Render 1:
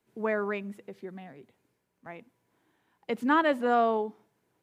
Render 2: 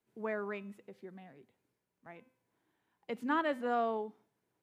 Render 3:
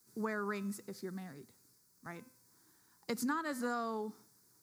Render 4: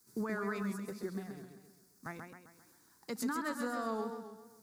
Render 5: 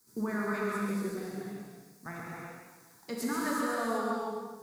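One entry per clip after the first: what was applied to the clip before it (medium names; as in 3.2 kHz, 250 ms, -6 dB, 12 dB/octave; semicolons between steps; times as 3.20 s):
de-hum 257.3 Hz, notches 29; trim -8 dB
FFT filter 140 Hz 0 dB, 330 Hz -3 dB, 650 Hz -11 dB, 1.3 kHz +2 dB, 3 kHz -12 dB, 4.7 kHz +14 dB; compression 12:1, threshold -42 dBFS, peak gain reduction 14 dB; trim +9.5 dB
transient shaper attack +4 dB, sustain -6 dB; peak limiter -29.5 dBFS, peak gain reduction 10.5 dB; modulated delay 132 ms, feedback 49%, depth 105 cents, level -6 dB; trim +1 dB
reverberation, pre-delay 3 ms, DRR -4.5 dB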